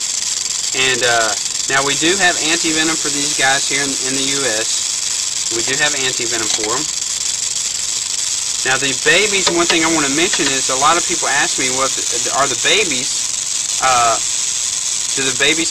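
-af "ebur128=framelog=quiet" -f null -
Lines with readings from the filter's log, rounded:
Integrated loudness:
  I:         -14.0 LUFS
  Threshold: -24.0 LUFS
Loudness range:
  LRA:         2.7 LU
  Threshold: -33.9 LUFS
  LRA low:   -15.5 LUFS
  LRA high:  -12.7 LUFS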